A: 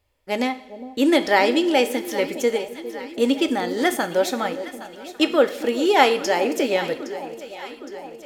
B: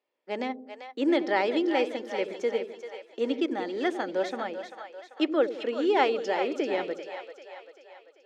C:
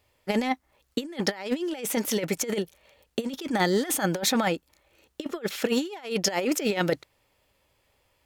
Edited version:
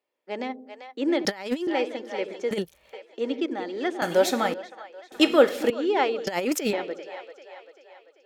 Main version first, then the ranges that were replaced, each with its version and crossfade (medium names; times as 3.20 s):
B
1.25–1.67 s: from C
2.51–2.93 s: from C
4.02–4.54 s: from A
5.12–5.70 s: from A
6.27–6.73 s: from C